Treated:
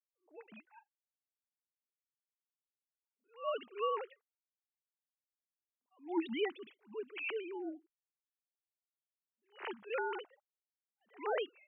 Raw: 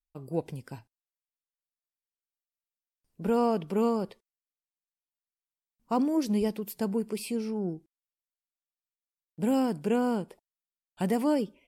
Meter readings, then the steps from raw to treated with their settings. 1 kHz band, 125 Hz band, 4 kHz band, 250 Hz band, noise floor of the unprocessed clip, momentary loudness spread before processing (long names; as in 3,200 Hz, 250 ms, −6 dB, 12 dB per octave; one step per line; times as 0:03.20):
−8.0 dB, below −30 dB, −3.5 dB, −17.5 dB, below −85 dBFS, 14 LU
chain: three sine waves on the formant tracks
first difference
low-pass that shuts in the quiet parts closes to 670 Hz, open at −48 dBFS
level that may rise only so fast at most 210 dB per second
level +15 dB